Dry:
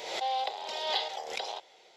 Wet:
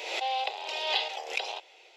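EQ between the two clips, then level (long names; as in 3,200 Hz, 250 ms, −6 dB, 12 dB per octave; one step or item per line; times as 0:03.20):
linear-phase brick-wall high-pass 270 Hz
parametric band 2,600 Hz +12.5 dB 0.33 octaves
0.0 dB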